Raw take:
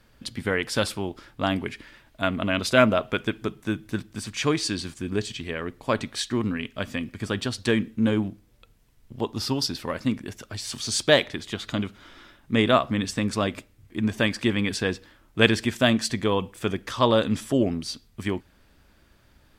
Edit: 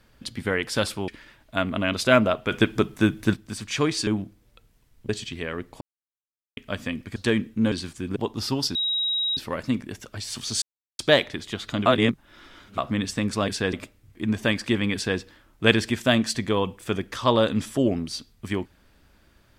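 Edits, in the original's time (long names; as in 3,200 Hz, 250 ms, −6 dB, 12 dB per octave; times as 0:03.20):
0:01.08–0:01.74: remove
0:03.17–0:04.00: clip gain +7 dB
0:04.73–0:05.17: swap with 0:08.13–0:09.15
0:05.89–0:06.65: silence
0:07.24–0:07.57: remove
0:09.74: insert tone 3,820 Hz −22 dBFS 0.62 s
0:10.99: splice in silence 0.37 s
0:11.86–0:12.78: reverse
0:14.69–0:14.94: duplicate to 0:13.48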